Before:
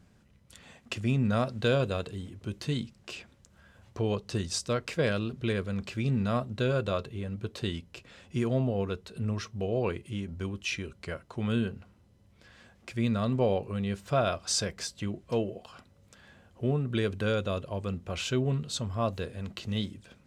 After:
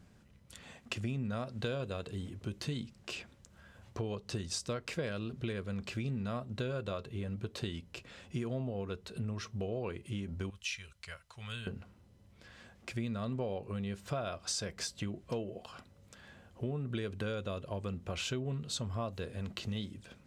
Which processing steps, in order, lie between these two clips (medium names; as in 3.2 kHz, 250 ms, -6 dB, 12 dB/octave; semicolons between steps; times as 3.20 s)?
10.50–11.67 s: amplifier tone stack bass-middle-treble 10-0-10; compression 5:1, threshold -34 dBFS, peak gain reduction 12 dB